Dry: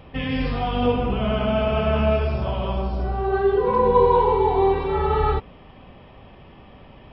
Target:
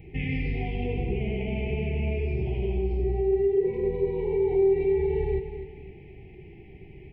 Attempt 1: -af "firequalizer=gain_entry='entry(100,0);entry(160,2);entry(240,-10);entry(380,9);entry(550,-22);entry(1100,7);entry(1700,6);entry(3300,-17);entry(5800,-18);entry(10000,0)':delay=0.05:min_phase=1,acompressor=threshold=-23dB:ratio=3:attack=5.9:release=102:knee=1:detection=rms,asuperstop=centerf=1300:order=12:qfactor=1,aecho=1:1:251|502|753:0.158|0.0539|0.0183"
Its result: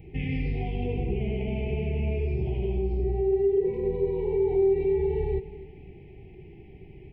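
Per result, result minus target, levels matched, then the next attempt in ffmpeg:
2000 Hz band -4.0 dB; echo-to-direct -6 dB
-af "firequalizer=gain_entry='entry(100,0);entry(160,2);entry(240,-10);entry(380,9);entry(550,-22);entry(1100,7);entry(1700,6);entry(3300,-17);entry(5800,-18);entry(10000,0)':delay=0.05:min_phase=1,acompressor=threshold=-23dB:ratio=3:attack=5.9:release=102:knee=1:detection=rms,asuperstop=centerf=1300:order=12:qfactor=1,equalizer=f=2k:w=1.5:g=5,aecho=1:1:251|502|753:0.158|0.0539|0.0183"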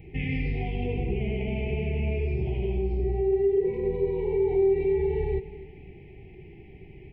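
echo-to-direct -6 dB
-af "firequalizer=gain_entry='entry(100,0);entry(160,2);entry(240,-10);entry(380,9);entry(550,-22);entry(1100,7);entry(1700,6);entry(3300,-17);entry(5800,-18);entry(10000,0)':delay=0.05:min_phase=1,acompressor=threshold=-23dB:ratio=3:attack=5.9:release=102:knee=1:detection=rms,asuperstop=centerf=1300:order=12:qfactor=1,equalizer=f=2k:w=1.5:g=5,aecho=1:1:251|502|753|1004:0.316|0.108|0.0366|0.0124"

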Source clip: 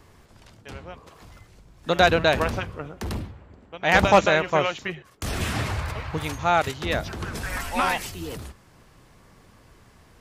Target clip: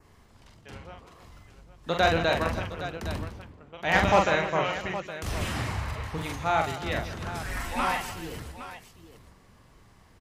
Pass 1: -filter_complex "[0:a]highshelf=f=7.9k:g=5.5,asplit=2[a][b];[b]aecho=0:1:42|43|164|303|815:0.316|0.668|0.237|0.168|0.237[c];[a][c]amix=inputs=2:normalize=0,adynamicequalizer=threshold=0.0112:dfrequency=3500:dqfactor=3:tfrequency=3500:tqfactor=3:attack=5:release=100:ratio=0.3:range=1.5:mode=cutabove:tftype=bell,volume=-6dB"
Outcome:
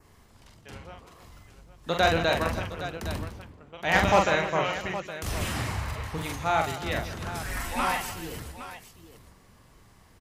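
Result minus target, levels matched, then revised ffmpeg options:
8000 Hz band +3.0 dB
-filter_complex "[0:a]highshelf=f=7.9k:g=-2,asplit=2[a][b];[b]aecho=0:1:42|43|164|303|815:0.316|0.668|0.237|0.168|0.237[c];[a][c]amix=inputs=2:normalize=0,adynamicequalizer=threshold=0.0112:dfrequency=3500:dqfactor=3:tfrequency=3500:tqfactor=3:attack=5:release=100:ratio=0.3:range=1.5:mode=cutabove:tftype=bell,volume=-6dB"

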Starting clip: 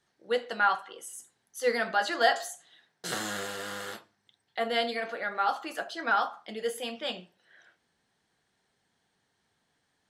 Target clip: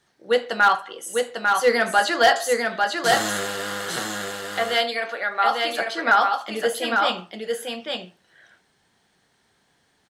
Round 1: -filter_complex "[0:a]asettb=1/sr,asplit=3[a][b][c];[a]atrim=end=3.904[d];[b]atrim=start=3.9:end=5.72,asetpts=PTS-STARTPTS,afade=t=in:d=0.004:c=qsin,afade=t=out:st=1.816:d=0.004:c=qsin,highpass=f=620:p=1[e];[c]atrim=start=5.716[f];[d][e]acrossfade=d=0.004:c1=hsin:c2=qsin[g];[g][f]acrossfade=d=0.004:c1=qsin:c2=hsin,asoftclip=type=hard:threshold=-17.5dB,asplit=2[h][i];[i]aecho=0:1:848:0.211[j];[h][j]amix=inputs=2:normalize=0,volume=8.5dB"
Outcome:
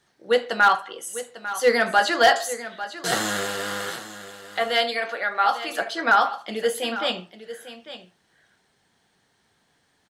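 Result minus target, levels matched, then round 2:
echo-to-direct -10 dB
-filter_complex "[0:a]asettb=1/sr,asplit=3[a][b][c];[a]atrim=end=3.904[d];[b]atrim=start=3.9:end=5.72,asetpts=PTS-STARTPTS,afade=t=in:d=0.004:c=qsin,afade=t=out:st=1.816:d=0.004:c=qsin,highpass=f=620:p=1[e];[c]atrim=start=5.716[f];[d][e]acrossfade=d=0.004:c1=hsin:c2=qsin[g];[g][f]acrossfade=d=0.004:c1=qsin:c2=hsin,asoftclip=type=hard:threshold=-17.5dB,asplit=2[h][i];[i]aecho=0:1:848:0.668[j];[h][j]amix=inputs=2:normalize=0,volume=8.5dB"

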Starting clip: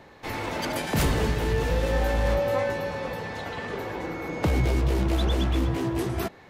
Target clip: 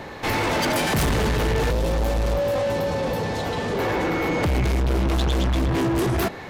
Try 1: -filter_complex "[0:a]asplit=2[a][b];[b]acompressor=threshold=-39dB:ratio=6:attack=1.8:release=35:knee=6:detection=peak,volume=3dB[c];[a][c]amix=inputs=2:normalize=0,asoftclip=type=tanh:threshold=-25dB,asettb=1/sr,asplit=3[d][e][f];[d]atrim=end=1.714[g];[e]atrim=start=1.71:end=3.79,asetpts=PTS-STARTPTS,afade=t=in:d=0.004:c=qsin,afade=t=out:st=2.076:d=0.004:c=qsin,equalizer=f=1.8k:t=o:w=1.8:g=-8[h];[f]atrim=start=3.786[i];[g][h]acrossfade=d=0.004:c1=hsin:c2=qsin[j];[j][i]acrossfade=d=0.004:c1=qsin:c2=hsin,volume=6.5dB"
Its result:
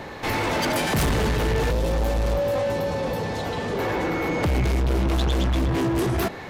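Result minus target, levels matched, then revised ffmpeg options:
compressor: peak gain reduction +8.5 dB
-filter_complex "[0:a]asplit=2[a][b];[b]acompressor=threshold=-29dB:ratio=6:attack=1.8:release=35:knee=6:detection=peak,volume=3dB[c];[a][c]amix=inputs=2:normalize=0,asoftclip=type=tanh:threshold=-25dB,asettb=1/sr,asplit=3[d][e][f];[d]atrim=end=1.714[g];[e]atrim=start=1.71:end=3.79,asetpts=PTS-STARTPTS,afade=t=in:d=0.004:c=qsin,afade=t=out:st=2.076:d=0.004:c=qsin,equalizer=f=1.8k:t=o:w=1.8:g=-8[h];[f]atrim=start=3.786[i];[g][h]acrossfade=d=0.004:c1=hsin:c2=qsin[j];[j][i]acrossfade=d=0.004:c1=qsin:c2=hsin,volume=6.5dB"

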